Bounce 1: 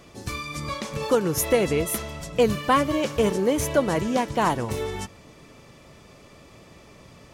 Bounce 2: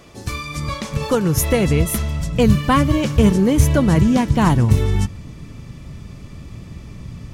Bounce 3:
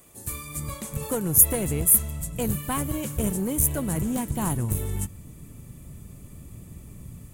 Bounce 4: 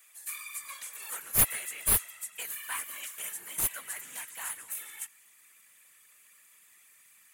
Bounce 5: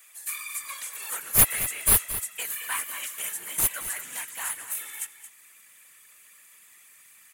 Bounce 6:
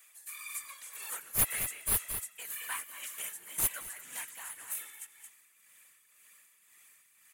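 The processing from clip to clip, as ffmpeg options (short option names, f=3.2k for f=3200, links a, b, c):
-af "asubboost=boost=8:cutoff=190,volume=4dB"
-filter_complex "[0:a]acrossover=split=740|5000[a][b][c];[a]dynaudnorm=f=200:g=3:m=5dB[d];[d][b][c]amix=inputs=3:normalize=0,aeval=exprs='clip(val(0),-1,0.237)':c=same,aexciter=amount=13.2:drive=4.9:freq=7.7k,volume=-13dB"
-af "highpass=f=1.8k:t=q:w=2,aeval=exprs='clip(val(0),-1,0.0668)':c=same,afftfilt=real='hypot(re,im)*cos(2*PI*random(0))':imag='hypot(re,im)*sin(2*PI*random(1))':win_size=512:overlap=0.75,volume=2dB"
-af "aecho=1:1:224:0.237,volume=5.5dB"
-af "tremolo=f=1.9:d=0.56,volume=-5.5dB"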